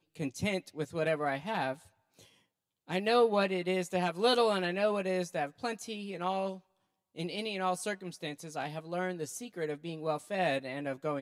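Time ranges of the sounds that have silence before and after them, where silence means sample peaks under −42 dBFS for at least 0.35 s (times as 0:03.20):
0:02.88–0:06.57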